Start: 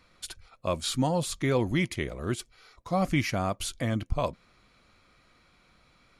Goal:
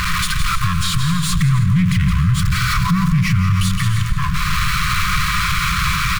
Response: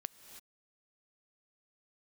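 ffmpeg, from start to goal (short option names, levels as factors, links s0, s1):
-filter_complex "[0:a]aeval=exprs='val(0)+0.5*0.0299*sgn(val(0))':c=same,acompressor=mode=upward:threshold=0.0251:ratio=2.5,aeval=exprs='(tanh(17.8*val(0)+0.55)-tanh(0.55))/17.8':c=same,acompressor=threshold=0.0282:ratio=6,asettb=1/sr,asplit=3[s0][s1][s2];[s0]atrim=end=1.334[s3];[s1]atrim=start=1.33:end=3.58,asetpts=PTS-STARTPTS,afade=t=in:d=0.004:c=qsin,afade=t=out:st=2.246:d=0.004:c=qsin,equalizer=f=160:t=o:w=2.7:g=10.5[s4];[s2]atrim=start=3.576[s5];[s3][s4]acrossfade=d=0.004:c1=hsin:c2=qsin[s6];[s6][s5]acrossfade=d=0.004:c1=qsin:c2=hsin,aecho=1:1:166:0.422[s7];[1:a]atrim=start_sample=2205[s8];[s7][s8]afir=irnorm=-1:irlink=0,afftfilt=real='re*(1-between(b*sr/4096,190,1000))':imag='im*(1-between(b*sr/4096,190,1000))':win_size=4096:overlap=0.75,highshelf=f=2800:g=-10.5,alimiter=level_in=44.7:limit=0.891:release=50:level=0:latency=1,volume=0.422"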